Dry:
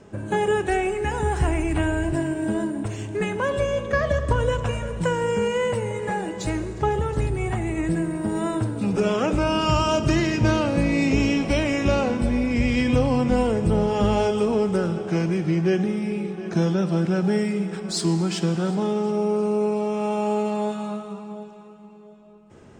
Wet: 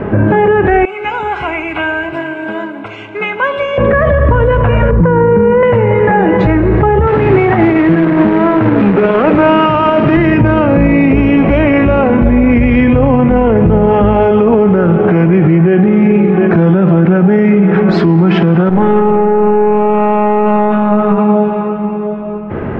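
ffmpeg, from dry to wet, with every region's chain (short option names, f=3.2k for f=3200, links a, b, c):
-filter_complex "[0:a]asettb=1/sr,asplit=3[a][b][c];[a]atrim=end=0.854[d];[b]atrim=start=0.85:end=3.78,asetpts=PTS-STARTPTS,afade=t=in:d=0.004:c=qsin,afade=t=out:st=2.926:d=0.004:c=qsin,asuperstop=centerf=1800:order=8:qfactor=5.4,aderivative[e];[c]atrim=start=3.776[f];[d][e]acrossfade=d=0.004:c1=hsin:c2=qsin[g];[g][f]acrossfade=d=0.004:c1=qsin:c2=hsin,asettb=1/sr,asplit=3[h][i][j];[h]atrim=end=4.914[k];[i]atrim=start=4.91:end=5.63,asetpts=PTS-STARTPTS,afade=t=in:d=0.004:c=qsin,afade=t=out:st=0.716:d=0.004:c=qsin,lowpass=1.1k,equalizer=f=670:t=o:w=0.49:g=-12.5[l];[j]atrim=start=5.626[m];[k][l]acrossfade=d=0.004:c1=hsin:c2=qsin[n];[n][m]acrossfade=d=0.004:c1=qsin:c2=hsin,asettb=1/sr,asplit=3[o][p][q];[o]atrim=end=7.074[r];[p]atrim=start=7.07:end=10.17,asetpts=PTS-STARTPTS,afade=t=in:d=0.004:c=qsin,afade=t=out:st=3.096:d=0.004:c=qsin,highpass=180,lowpass=6.4k,acrusher=bits=2:mode=log:mix=0:aa=0.000001[s];[q]atrim=start=10.166[t];[r][s]acrossfade=d=0.004:c1=hsin:c2=qsin[u];[u][t]acrossfade=d=0.004:c1=qsin:c2=hsin,asettb=1/sr,asplit=3[v][w][x];[v]atrim=end=18.694[y];[w]atrim=start=18.69:end=21.18,asetpts=PTS-STARTPTS,afade=t=in:d=0.004:c=qsin,afade=t=out:st=2.486:d=0.004:c=qsin,highshelf=f=6.9k:g=-9.5,acompressor=threshold=-28dB:ratio=2:attack=3.2:release=140:knee=1:detection=peak,aeval=exprs='(tanh(20*val(0)+0.55)-tanh(0.55))/20':c=same[z];[x]atrim=start=21.176[aa];[y][z]acrossfade=d=0.004:c1=hsin:c2=qsin[ab];[ab][aa]acrossfade=d=0.004:c1=qsin:c2=hsin,acompressor=threshold=-33dB:ratio=2,lowpass=f=2.2k:w=0.5412,lowpass=f=2.2k:w=1.3066,alimiter=level_in=30.5dB:limit=-1dB:release=50:level=0:latency=1,volume=-1dB"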